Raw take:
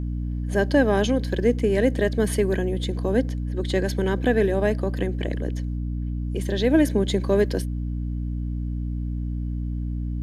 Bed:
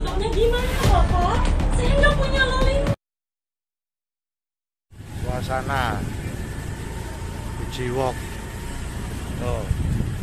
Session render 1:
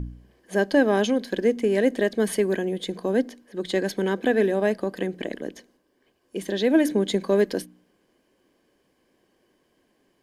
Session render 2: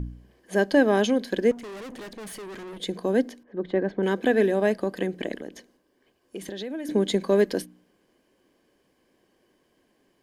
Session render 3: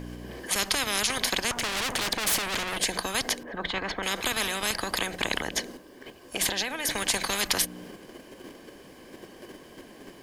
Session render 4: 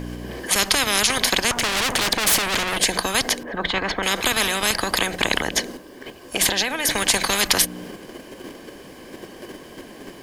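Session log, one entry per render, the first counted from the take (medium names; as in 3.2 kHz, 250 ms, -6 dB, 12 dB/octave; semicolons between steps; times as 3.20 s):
de-hum 60 Hz, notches 5
1.51–2.80 s: valve stage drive 37 dB, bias 0.6; 3.43–4.03 s: low-pass 1.4 kHz; 5.39–6.89 s: compression, threshold -31 dBFS
in parallel at -2 dB: level held to a coarse grid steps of 22 dB; on the sum: spectrum-flattening compressor 10:1
trim +7.5 dB; peak limiter -1 dBFS, peak gain reduction 2 dB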